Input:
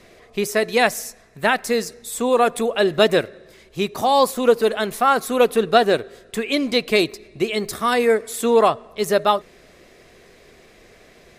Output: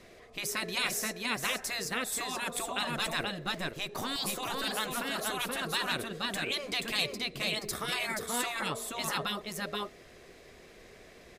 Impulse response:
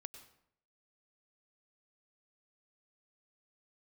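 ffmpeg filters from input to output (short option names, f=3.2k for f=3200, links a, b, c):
-filter_complex "[0:a]asettb=1/sr,asplit=3[a][b][c];[a]atrim=end=2.954[d];[b]atrim=start=2.95:end=4.16,asetpts=PTS-STARTPTS,afade=t=in:d=0.004:c=qsin,afade=t=out:st=1.206:d=0.004:c=qsin,aeval=exprs='if(lt(val(0),0),0.708*val(0),val(0))':c=same[e];[c]atrim=start=4.156[f];[d][e]acrossfade=d=0.004:c1=hsin:c2=qsin[g];[g][f]acrossfade=d=0.004:c1=qsin:c2=hsin,aecho=1:1:478:0.562,afftfilt=real='re*lt(hypot(re,im),0.316)':imag='im*lt(hypot(re,im),0.316)':win_size=1024:overlap=0.75,volume=-5.5dB"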